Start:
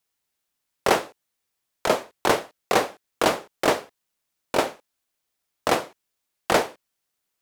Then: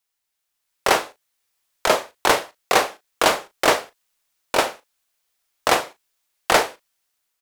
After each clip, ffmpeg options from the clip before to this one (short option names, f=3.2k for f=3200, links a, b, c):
-filter_complex "[0:a]equalizer=f=180:t=o:w=3:g=-9.5,asplit=2[a][b];[b]adelay=37,volume=-13dB[c];[a][c]amix=inputs=2:normalize=0,dynaudnorm=f=240:g=5:m=11.5dB"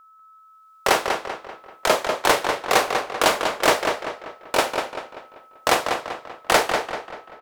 -filter_complex "[0:a]aeval=exprs='val(0)+0.00398*sin(2*PI*1300*n/s)':c=same,asplit=2[a][b];[b]adelay=194,lowpass=f=4.2k:p=1,volume=-5dB,asplit=2[c][d];[d]adelay=194,lowpass=f=4.2k:p=1,volume=0.45,asplit=2[e][f];[f]adelay=194,lowpass=f=4.2k:p=1,volume=0.45,asplit=2[g][h];[h]adelay=194,lowpass=f=4.2k:p=1,volume=0.45,asplit=2[i][j];[j]adelay=194,lowpass=f=4.2k:p=1,volume=0.45,asplit=2[k][l];[l]adelay=194,lowpass=f=4.2k:p=1,volume=0.45[m];[c][e][g][i][k][m]amix=inputs=6:normalize=0[n];[a][n]amix=inputs=2:normalize=0,volume=-1dB"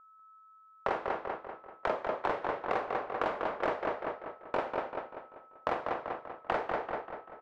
-af "lowpass=1.5k,acompressor=threshold=-23dB:ratio=6,volume=-5dB"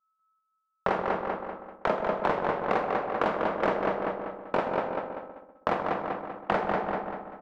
-filter_complex "[0:a]agate=range=-33dB:threshold=-46dB:ratio=3:detection=peak,equalizer=f=190:w=2.4:g=11,asplit=2[a][b];[b]adelay=128,lowpass=f=1k:p=1,volume=-6dB,asplit=2[c][d];[d]adelay=128,lowpass=f=1k:p=1,volume=0.49,asplit=2[e][f];[f]adelay=128,lowpass=f=1k:p=1,volume=0.49,asplit=2[g][h];[h]adelay=128,lowpass=f=1k:p=1,volume=0.49,asplit=2[i][j];[j]adelay=128,lowpass=f=1k:p=1,volume=0.49,asplit=2[k][l];[l]adelay=128,lowpass=f=1k:p=1,volume=0.49[m];[a][c][e][g][i][k][m]amix=inputs=7:normalize=0,volume=4.5dB"